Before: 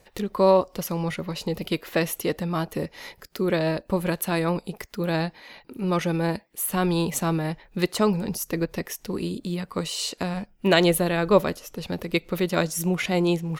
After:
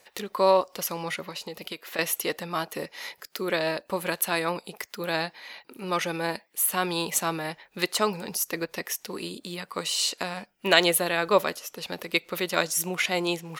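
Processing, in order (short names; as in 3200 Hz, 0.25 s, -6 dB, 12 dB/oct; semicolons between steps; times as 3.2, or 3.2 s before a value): HPF 1000 Hz 6 dB/oct; 1.25–1.99 compressor 6:1, threshold -37 dBFS, peak gain reduction 13 dB; gain +3.5 dB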